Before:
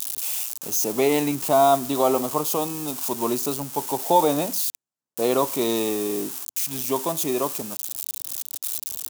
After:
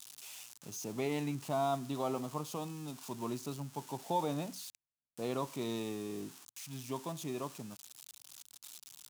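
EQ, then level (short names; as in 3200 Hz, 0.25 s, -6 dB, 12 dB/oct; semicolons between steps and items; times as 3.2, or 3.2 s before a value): tilt -3.5 dB/oct; passive tone stack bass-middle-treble 5-5-5; high shelf 11000 Hz -10 dB; 0.0 dB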